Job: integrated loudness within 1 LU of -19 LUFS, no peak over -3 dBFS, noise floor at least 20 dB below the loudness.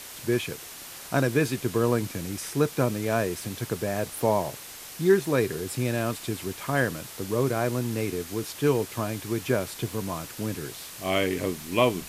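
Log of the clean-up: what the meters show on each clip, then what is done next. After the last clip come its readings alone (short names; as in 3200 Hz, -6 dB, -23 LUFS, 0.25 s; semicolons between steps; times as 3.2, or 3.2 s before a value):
noise floor -42 dBFS; noise floor target -48 dBFS; loudness -27.5 LUFS; peak -7.5 dBFS; loudness target -19.0 LUFS
-> denoiser 6 dB, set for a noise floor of -42 dBFS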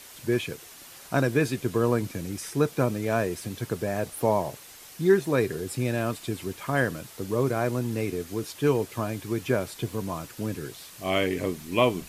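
noise floor -47 dBFS; noise floor target -48 dBFS
-> denoiser 6 dB, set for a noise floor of -47 dBFS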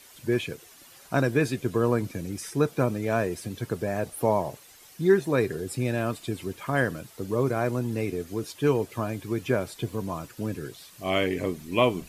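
noise floor -52 dBFS; loudness -28.0 LUFS; peak -7.5 dBFS; loudness target -19.0 LUFS
-> gain +9 dB; limiter -3 dBFS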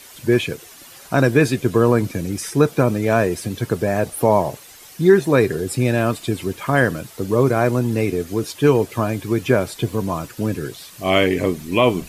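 loudness -19.5 LUFS; peak -3.0 dBFS; noise floor -43 dBFS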